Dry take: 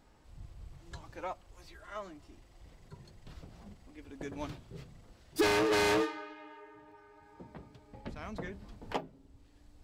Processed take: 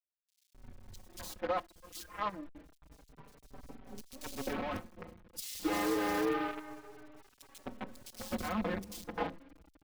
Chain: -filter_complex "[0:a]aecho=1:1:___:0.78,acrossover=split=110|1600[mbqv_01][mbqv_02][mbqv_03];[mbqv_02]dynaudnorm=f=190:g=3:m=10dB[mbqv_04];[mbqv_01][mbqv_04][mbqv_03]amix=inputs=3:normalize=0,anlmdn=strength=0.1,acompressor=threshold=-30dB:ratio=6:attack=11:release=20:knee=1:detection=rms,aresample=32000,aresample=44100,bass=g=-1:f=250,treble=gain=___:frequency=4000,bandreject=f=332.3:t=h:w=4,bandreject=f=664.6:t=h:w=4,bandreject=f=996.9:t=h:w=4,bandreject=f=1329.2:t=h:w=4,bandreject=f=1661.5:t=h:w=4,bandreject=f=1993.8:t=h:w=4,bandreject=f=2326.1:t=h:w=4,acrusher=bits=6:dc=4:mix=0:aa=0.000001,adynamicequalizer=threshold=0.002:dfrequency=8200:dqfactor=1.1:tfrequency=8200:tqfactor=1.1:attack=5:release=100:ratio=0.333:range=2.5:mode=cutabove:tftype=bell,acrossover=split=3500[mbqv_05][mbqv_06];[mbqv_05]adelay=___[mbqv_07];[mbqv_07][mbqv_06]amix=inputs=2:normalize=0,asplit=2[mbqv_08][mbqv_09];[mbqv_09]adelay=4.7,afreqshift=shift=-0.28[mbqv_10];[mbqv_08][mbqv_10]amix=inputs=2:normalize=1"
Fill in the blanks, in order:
3.9, 4, 260